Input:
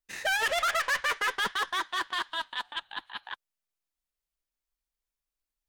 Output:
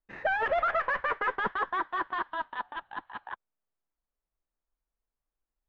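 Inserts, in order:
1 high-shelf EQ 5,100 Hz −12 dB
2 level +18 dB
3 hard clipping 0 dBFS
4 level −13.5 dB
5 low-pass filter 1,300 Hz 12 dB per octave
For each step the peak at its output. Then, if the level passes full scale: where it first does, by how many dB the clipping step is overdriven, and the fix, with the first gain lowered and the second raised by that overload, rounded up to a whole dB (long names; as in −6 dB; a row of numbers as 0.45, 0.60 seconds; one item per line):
−21.0, −3.0, −3.0, −16.5, −19.0 dBFS
no step passes full scale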